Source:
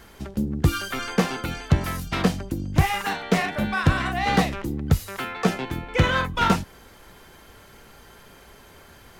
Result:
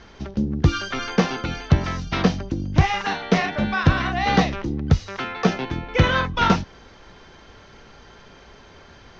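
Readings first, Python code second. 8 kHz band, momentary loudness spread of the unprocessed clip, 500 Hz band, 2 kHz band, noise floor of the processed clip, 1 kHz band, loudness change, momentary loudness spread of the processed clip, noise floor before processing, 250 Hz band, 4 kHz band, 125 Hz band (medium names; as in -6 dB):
-2.5 dB, 8 LU, +2.5 dB, +1.5 dB, -48 dBFS, +2.0 dB, +2.0 dB, 8 LU, -49 dBFS, +2.5 dB, +2.0 dB, +2.5 dB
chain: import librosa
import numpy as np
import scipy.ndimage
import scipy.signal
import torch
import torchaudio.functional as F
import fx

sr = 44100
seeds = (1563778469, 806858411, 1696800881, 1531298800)

y = scipy.signal.sosfilt(scipy.signal.cheby1(5, 1.0, 6100.0, 'lowpass', fs=sr, output='sos'), x)
y = y * librosa.db_to_amplitude(2.5)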